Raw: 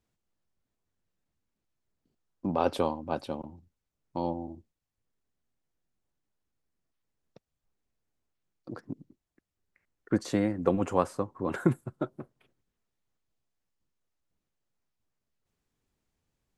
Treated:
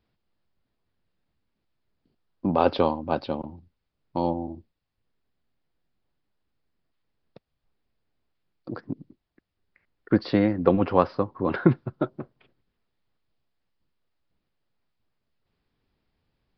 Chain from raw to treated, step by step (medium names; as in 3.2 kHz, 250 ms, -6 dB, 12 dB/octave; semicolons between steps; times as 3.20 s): resampled via 11.025 kHz; trim +6 dB